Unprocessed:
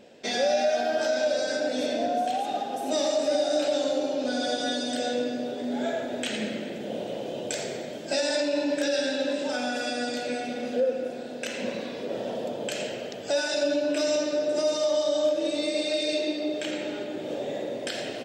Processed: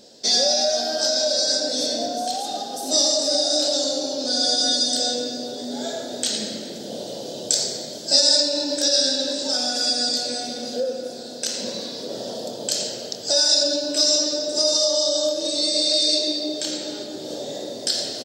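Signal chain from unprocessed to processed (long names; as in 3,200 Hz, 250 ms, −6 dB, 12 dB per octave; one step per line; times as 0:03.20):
high shelf with overshoot 3,400 Hz +11 dB, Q 3
double-tracking delay 26 ms −11 dB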